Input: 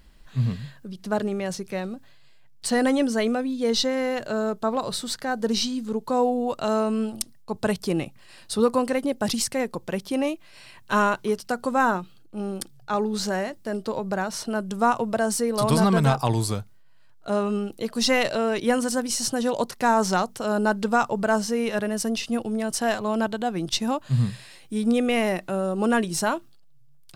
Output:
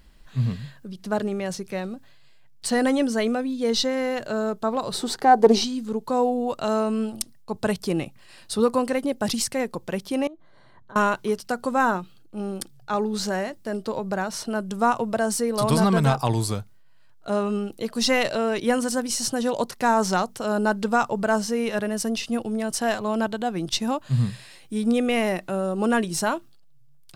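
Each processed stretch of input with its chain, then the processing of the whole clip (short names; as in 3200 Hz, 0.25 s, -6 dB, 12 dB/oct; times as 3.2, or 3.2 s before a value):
4.94–5.64 small resonant body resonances 400/770 Hz, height 15 dB, ringing for 20 ms + Doppler distortion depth 0.15 ms
10.27–10.96 compressor 8:1, threshold -38 dBFS + running mean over 17 samples
whole clip: dry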